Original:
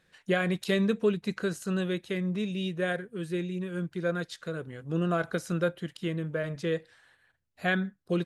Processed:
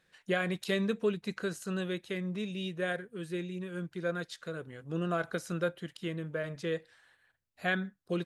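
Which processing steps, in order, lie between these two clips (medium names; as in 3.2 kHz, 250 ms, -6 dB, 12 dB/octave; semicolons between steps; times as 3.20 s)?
bass shelf 340 Hz -4 dB; trim -2.5 dB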